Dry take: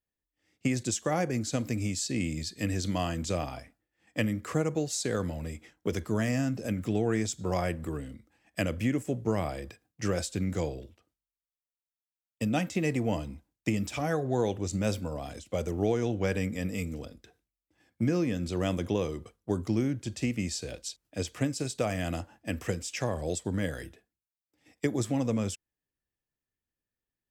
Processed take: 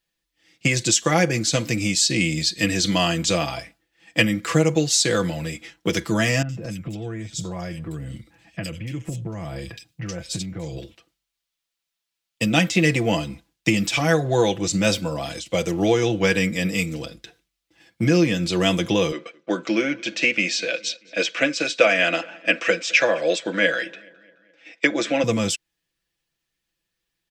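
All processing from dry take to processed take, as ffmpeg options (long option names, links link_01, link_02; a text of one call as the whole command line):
ffmpeg -i in.wav -filter_complex "[0:a]asettb=1/sr,asplit=3[link_01][link_02][link_03];[link_01]atrim=end=6.424[link_04];[link_02]atrim=start=6.42:end=10.77,asetpts=PTS-STARTPTS,afade=type=in:duration=0.004:curve=qsin,afade=type=out:start_time=4.346:duration=0.004:curve=qsin,equalizer=frequency=100:width_type=o:width=1.9:gain=12.5,acompressor=threshold=-36dB:ratio=5:attack=3.2:release=140:knee=1:detection=peak,acrossover=split=2500[link_05][link_06];[link_06]adelay=70[link_07];[link_05][link_07]amix=inputs=2:normalize=0,atrim=end_sample=191835[link_08];[link_03]atrim=start=10.766[link_09];[link_04][link_08]acrossfade=duration=0.004:curve1=hsin:curve2=qsin[link_10];[link_10][link_09]acrossfade=duration=0.004:curve1=qsin:curve2=hsin,asettb=1/sr,asplit=3[link_11][link_12][link_13];[link_11]atrim=end=19.124[link_14];[link_12]atrim=start=19.12:end=25.24,asetpts=PTS-STARTPTS,afade=type=in:duration=0.004:curve=qsin,afade=type=out:start_time=6.116:duration=0.004:curve=qsin,highpass=frequency=240:width=0.5412,highpass=frequency=240:width=1.3066,equalizer=frequency=380:width_type=q:width=4:gain=-3,equalizer=frequency=570:width_type=q:width=4:gain=9,equalizer=frequency=860:width_type=q:width=4:gain=-4,equalizer=frequency=1500:width_type=q:width=4:gain=9,equalizer=frequency=2400:width_type=q:width=4:gain=8,equalizer=frequency=4800:width_type=q:width=4:gain=-5,lowpass=frequency=6000:width=0.5412,lowpass=frequency=6000:width=1.3066,asplit=2[link_15][link_16];[link_16]adelay=212,lowpass=frequency=4200:poles=1,volume=-23dB,asplit=2[link_17][link_18];[link_18]adelay=212,lowpass=frequency=4200:poles=1,volume=0.54,asplit=2[link_19][link_20];[link_20]adelay=212,lowpass=frequency=4200:poles=1,volume=0.54,asplit=2[link_21][link_22];[link_22]adelay=212,lowpass=frequency=4200:poles=1,volume=0.54[link_23];[link_15][link_17][link_19][link_21][link_23]amix=inputs=5:normalize=0,atrim=end_sample=269892[link_24];[link_13]atrim=start=25.236[link_25];[link_14][link_24]acrossfade=duration=0.004:curve1=hsin:curve2=qsin[link_26];[link_26][link_25]acrossfade=duration=0.004:curve1=qsin:curve2=hsin,equalizer=frequency=3500:width=0.6:gain=10,aecho=1:1:6:0.65,volume=6.5dB" out.wav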